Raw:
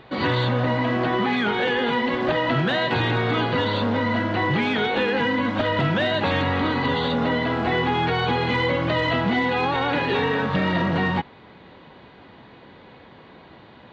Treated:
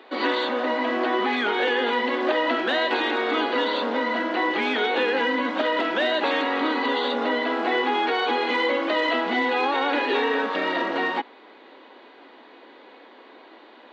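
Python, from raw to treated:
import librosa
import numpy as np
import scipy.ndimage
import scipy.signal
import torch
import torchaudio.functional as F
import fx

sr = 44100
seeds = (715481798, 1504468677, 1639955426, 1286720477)

y = scipy.signal.sosfilt(scipy.signal.butter(8, 260.0, 'highpass', fs=sr, output='sos'), x)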